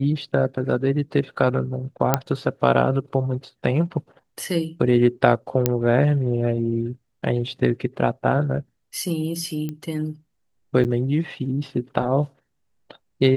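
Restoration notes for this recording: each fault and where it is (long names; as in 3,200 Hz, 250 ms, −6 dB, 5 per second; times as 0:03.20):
0:02.14: click −2 dBFS
0:05.66: click −3 dBFS
0:09.69: click −17 dBFS
0:10.84–0:10.85: drop-out 8.5 ms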